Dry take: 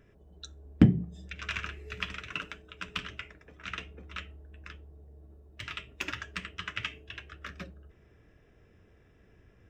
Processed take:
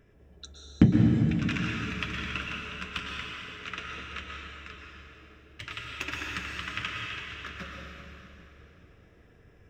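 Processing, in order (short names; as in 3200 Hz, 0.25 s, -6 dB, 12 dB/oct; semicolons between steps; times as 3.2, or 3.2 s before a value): plate-style reverb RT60 3.2 s, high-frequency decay 0.9×, pre-delay 0.1 s, DRR -1.5 dB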